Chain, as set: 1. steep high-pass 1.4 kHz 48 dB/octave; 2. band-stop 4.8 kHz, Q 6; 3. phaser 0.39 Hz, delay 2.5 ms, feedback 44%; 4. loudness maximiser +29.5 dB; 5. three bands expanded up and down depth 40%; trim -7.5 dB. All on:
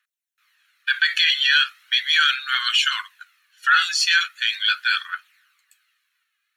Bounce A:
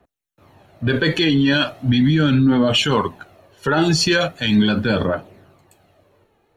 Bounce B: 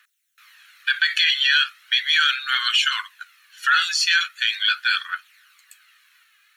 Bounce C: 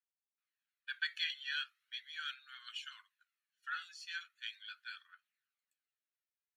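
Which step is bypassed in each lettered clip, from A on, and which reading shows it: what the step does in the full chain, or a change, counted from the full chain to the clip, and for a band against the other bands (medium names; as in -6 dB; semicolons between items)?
1, 2 kHz band -5.5 dB; 5, crest factor change -1.5 dB; 4, crest factor change +7.0 dB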